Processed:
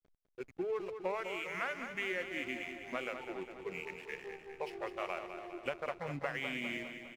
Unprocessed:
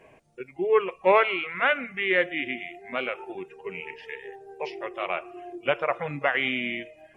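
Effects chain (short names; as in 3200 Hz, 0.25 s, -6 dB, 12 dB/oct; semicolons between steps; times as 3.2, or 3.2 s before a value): compressor 12:1, threshold -28 dBFS, peak gain reduction 14.5 dB; backlash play -40 dBFS; feedback echo 0.203 s, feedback 58%, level -8.5 dB; gain -5.5 dB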